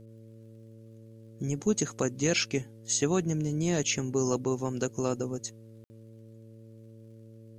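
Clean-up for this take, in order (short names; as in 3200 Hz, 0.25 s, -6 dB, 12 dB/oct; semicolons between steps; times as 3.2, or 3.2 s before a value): de-click; de-hum 112 Hz, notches 5; room tone fill 5.84–5.9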